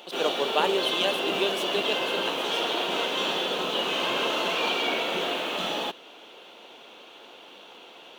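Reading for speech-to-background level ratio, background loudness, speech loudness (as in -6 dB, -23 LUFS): -3.0 dB, -26.5 LUFS, -29.5 LUFS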